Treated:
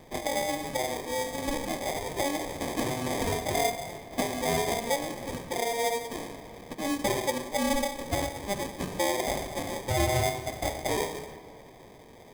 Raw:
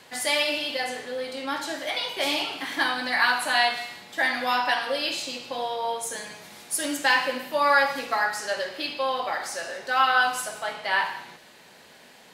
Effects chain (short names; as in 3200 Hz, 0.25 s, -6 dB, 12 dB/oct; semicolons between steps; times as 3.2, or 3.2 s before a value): 7.49–8.94 low shelf 490 Hz -11 dB; in parallel at -11 dB: wrapped overs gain 16 dB; on the sum: treble ducked by the level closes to 1000 Hz, closed at -21 dBFS; sample-rate reducer 1400 Hz, jitter 0%; on a send at -13 dB: reverb RT60 2.8 s, pre-delay 36 ms; on the sum: dynamic EQ 8800 Hz, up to +5 dB, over -50 dBFS, Q 0.86; gain -2 dB